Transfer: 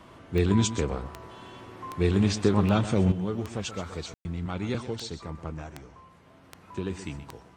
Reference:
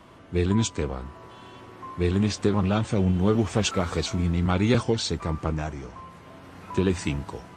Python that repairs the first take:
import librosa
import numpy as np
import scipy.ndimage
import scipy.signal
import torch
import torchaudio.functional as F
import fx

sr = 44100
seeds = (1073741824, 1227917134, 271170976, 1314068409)

y = fx.fix_declick_ar(x, sr, threshold=10.0)
y = fx.fix_ambience(y, sr, seeds[0], print_start_s=6.08, print_end_s=6.58, start_s=4.14, end_s=4.25)
y = fx.fix_echo_inverse(y, sr, delay_ms=127, level_db=-12.5)
y = fx.fix_level(y, sr, at_s=3.12, step_db=9.5)